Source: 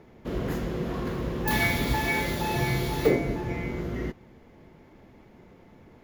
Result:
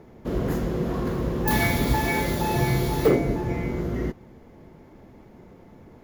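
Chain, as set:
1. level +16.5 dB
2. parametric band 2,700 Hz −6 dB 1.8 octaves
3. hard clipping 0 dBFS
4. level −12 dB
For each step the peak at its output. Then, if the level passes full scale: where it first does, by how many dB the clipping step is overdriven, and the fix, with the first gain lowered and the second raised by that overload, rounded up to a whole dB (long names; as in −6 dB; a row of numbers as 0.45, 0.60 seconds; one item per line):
+7.5, +7.0, 0.0, −12.0 dBFS
step 1, 7.0 dB
step 1 +9.5 dB, step 4 −5 dB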